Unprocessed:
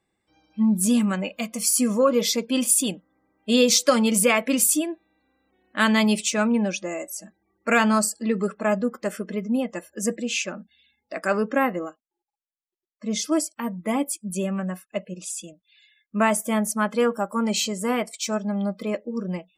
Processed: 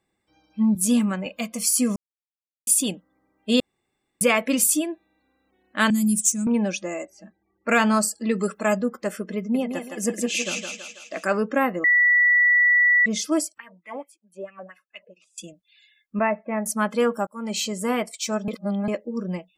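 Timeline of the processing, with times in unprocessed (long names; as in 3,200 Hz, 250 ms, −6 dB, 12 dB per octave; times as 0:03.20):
0:00.75–0:01.26: multiband upward and downward expander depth 70%
0:01.96–0:02.67: silence
0:03.60–0:04.21: fill with room tone
0:05.90–0:06.47: drawn EQ curve 230 Hz 0 dB, 420 Hz −21 dB, 840 Hz −28 dB, 2,900 Hz −22 dB, 4,300 Hz −17 dB, 6,400 Hz +6 dB, 11,000 Hz +13 dB
0:07.05–0:07.69: high-frequency loss of the air 230 metres
0:08.29–0:08.80: high-shelf EQ 3,600 Hz +11.5 dB
0:09.38–0:11.25: feedback echo with a high-pass in the loop 163 ms, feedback 57%, high-pass 390 Hz, level −3.5 dB
0:11.84–0:13.06: beep over 1,950 Hz −14 dBFS
0:13.58–0:15.38: LFO wah 4.5 Hz 490–2,700 Hz, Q 3.6
0:16.19–0:16.66: Chebyshev low-pass with heavy ripple 2,700 Hz, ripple 6 dB
0:17.27–0:17.85: fade in equal-power
0:18.48–0:18.88: reverse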